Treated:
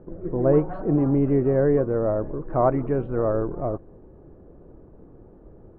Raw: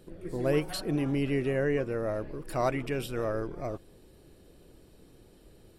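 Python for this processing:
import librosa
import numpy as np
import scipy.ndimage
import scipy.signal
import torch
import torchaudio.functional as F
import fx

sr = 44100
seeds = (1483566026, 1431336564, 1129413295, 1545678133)

y = scipy.signal.sosfilt(scipy.signal.butter(4, 1200.0, 'lowpass', fs=sr, output='sos'), x)
y = y * librosa.db_to_amplitude(8.5)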